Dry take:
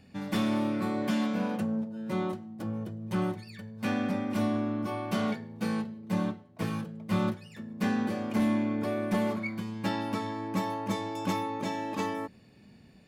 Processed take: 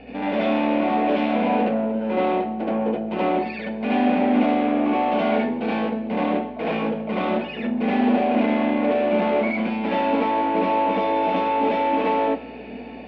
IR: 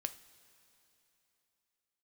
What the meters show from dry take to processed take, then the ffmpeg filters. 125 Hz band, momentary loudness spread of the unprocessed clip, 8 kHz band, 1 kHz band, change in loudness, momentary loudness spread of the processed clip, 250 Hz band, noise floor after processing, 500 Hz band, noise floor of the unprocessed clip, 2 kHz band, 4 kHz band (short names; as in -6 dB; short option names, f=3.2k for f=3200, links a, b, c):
-1.0 dB, 7 LU, under -15 dB, +14.0 dB, +9.5 dB, 6 LU, +8.0 dB, -36 dBFS, +13.5 dB, -56 dBFS, +9.5 dB, +6.5 dB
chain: -filter_complex "[0:a]asplit=2[a][b];[b]highpass=f=720:p=1,volume=27dB,asoftclip=type=tanh:threshold=-20.5dB[c];[a][c]amix=inputs=2:normalize=0,lowpass=f=1.6k:p=1,volume=-6dB,highpass=f=210:w=0.5412,highpass=f=210:w=1.3066,equalizer=f=250:t=q:w=4:g=9,equalizer=f=470:t=q:w=4:g=8,equalizer=f=710:t=q:w=4:g=7,equalizer=f=1.2k:t=q:w=4:g=-8,equalizer=f=1.7k:t=q:w=4:g=-5,equalizer=f=2.5k:t=q:w=4:g=5,lowpass=f=3.3k:w=0.5412,lowpass=f=3.3k:w=1.3066,asplit=2[d][e];[1:a]atrim=start_sample=2205,adelay=74[f];[e][f]afir=irnorm=-1:irlink=0,volume=5dB[g];[d][g]amix=inputs=2:normalize=0,aeval=exprs='val(0)+0.00316*(sin(2*PI*60*n/s)+sin(2*PI*2*60*n/s)/2+sin(2*PI*3*60*n/s)/3+sin(2*PI*4*60*n/s)/4+sin(2*PI*5*60*n/s)/5)':c=same,volume=-1dB"